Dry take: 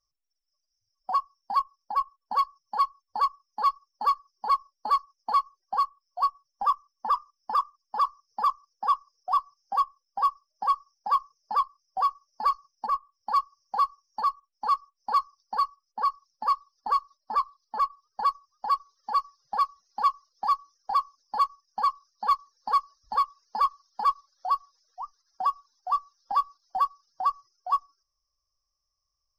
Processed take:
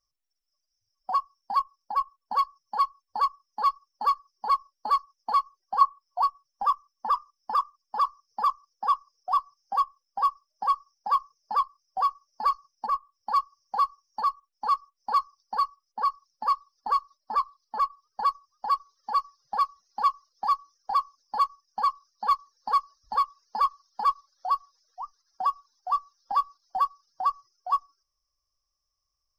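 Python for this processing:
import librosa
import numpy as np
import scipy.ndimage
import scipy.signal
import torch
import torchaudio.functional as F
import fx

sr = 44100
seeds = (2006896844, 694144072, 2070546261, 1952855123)

y = fx.peak_eq(x, sr, hz=970.0, db=12.0, octaves=0.61, at=(5.81, 6.22))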